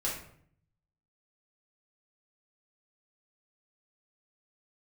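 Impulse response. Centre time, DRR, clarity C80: 37 ms, −5.0 dB, 8.5 dB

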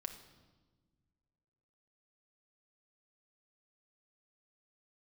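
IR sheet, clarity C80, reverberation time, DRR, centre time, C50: 11.5 dB, 1.4 s, 5.0 dB, 16 ms, 9.5 dB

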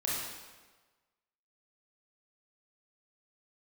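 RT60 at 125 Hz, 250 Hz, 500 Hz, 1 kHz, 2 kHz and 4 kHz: 1.2, 1.2, 1.3, 1.3, 1.2, 1.1 seconds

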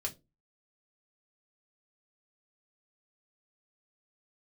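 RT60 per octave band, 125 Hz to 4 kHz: 0.40, 0.35, 0.30, 0.20, 0.15, 0.20 seconds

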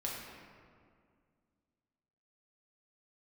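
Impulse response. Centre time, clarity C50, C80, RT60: 95 ms, 0.5 dB, 2.0 dB, 2.1 s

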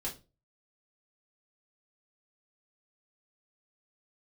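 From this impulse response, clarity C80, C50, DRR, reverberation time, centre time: 19.5 dB, 12.0 dB, −5.5 dB, 0.30 s, 18 ms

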